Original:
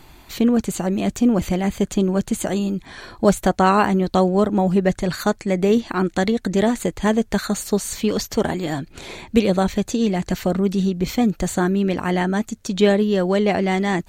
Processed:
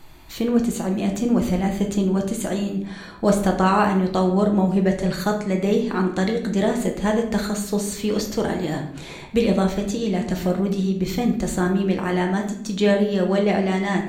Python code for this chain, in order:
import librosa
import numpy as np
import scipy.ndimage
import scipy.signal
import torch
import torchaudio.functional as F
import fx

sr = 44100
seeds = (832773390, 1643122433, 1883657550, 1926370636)

y = fx.room_shoebox(x, sr, seeds[0], volume_m3=140.0, walls='mixed', distance_m=0.69)
y = y * librosa.db_to_amplitude(-4.0)